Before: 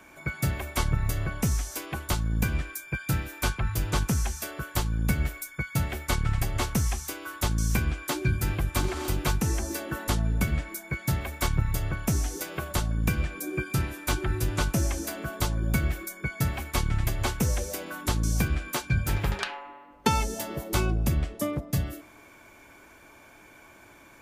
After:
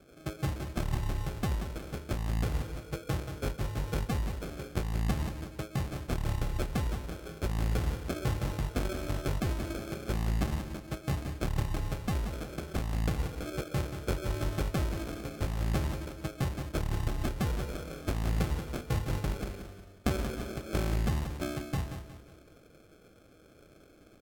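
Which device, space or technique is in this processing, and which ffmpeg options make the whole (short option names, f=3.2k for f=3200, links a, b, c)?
crushed at another speed: -af "asetrate=55125,aresample=44100,acrusher=samples=37:mix=1:aa=0.000001,asetrate=35280,aresample=44100,aecho=1:1:181|362|543|724:0.355|0.135|0.0512|0.0195,volume=-5.5dB"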